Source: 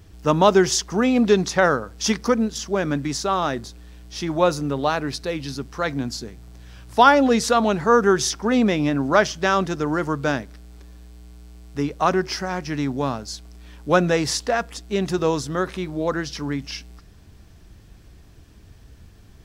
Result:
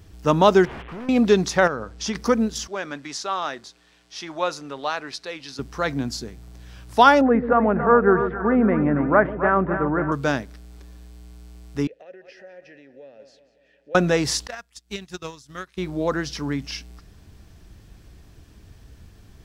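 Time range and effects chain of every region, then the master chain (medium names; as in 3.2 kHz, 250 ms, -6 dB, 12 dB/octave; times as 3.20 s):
0.65–1.09 s: one-bit delta coder 16 kbps, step -33.5 dBFS + compression 2:1, threshold -27 dBFS + hard clipper -32.5 dBFS
1.67–2.15 s: compression 4:1, threshold -22 dBFS + distance through air 51 m
2.67–5.59 s: high-pass 1.1 kHz 6 dB/octave + distance through air 53 m
7.21–10.12 s: steep low-pass 1.9 kHz + two-band feedback delay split 480 Hz, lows 134 ms, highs 277 ms, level -9 dB
11.87–13.95 s: feedback delay 186 ms, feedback 52%, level -18.5 dB + compression, threshold -27 dBFS + vowel filter e
14.47–15.78 s: transient shaper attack +11 dB, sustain -12 dB + amplifier tone stack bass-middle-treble 5-5-5
whole clip: none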